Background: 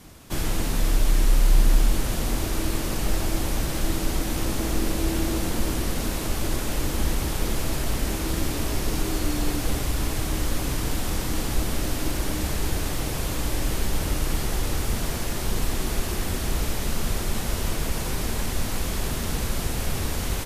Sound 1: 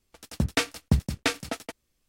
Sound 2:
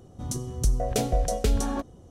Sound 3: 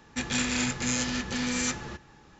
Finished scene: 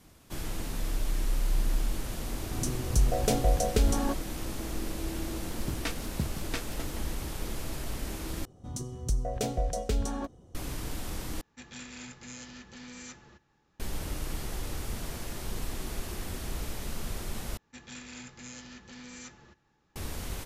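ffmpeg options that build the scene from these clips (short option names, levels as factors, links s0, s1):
-filter_complex "[2:a]asplit=2[s0][s1];[3:a]asplit=2[s2][s3];[0:a]volume=0.316[s4];[s1]equalizer=f=11000:w=6.1:g=-9[s5];[s4]asplit=4[s6][s7][s8][s9];[s6]atrim=end=8.454[s10];[s5]atrim=end=2.1,asetpts=PTS-STARTPTS,volume=0.531[s11];[s7]atrim=start=10.546:end=11.414[s12];[s2]atrim=end=2.39,asetpts=PTS-STARTPTS,volume=0.15[s13];[s8]atrim=start=13.796:end=17.574[s14];[s3]atrim=end=2.39,asetpts=PTS-STARTPTS,volume=0.141[s15];[s9]atrim=start=19.956[s16];[s0]atrim=end=2.1,asetpts=PTS-STARTPTS,volume=0.891,afade=t=in:d=0.004:c=hsin,afade=t=out:st=2.096:d=0.004:c=hsin,adelay=2320[s17];[1:a]atrim=end=2.08,asetpts=PTS-STARTPTS,volume=0.299,afade=t=in:d=0.004:c=hsin,afade=t=out:st=2.076:d=0.004:c=hsin,adelay=5280[s18];[s10][s11]acrossfade=d=0.004:c1=hsin:c2=hsin[s19];[s19][s12]acrossfade=d=0.004:c1=hsin:c2=hsin[s20];[s20][s13]acrossfade=d=0.004:c1=hsin:c2=hsin[s21];[s21][s14]acrossfade=d=0.004:c1=hsin:c2=hsin[s22];[s22][s15]acrossfade=d=0.004:c1=hsin:c2=hsin[s23];[s23][s16]acrossfade=d=0.004:c1=hsin:c2=hsin[s24];[s24][s17][s18]amix=inputs=3:normalize=0"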